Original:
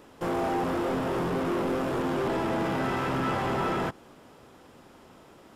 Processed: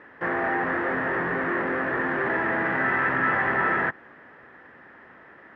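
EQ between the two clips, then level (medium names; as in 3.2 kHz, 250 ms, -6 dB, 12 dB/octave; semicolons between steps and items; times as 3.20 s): high-pass 42 Hz; resonant low-pass 1.8 kHz, resonance Q 10; bass shelf 170 Hz -6.5 dB; 0.0 dB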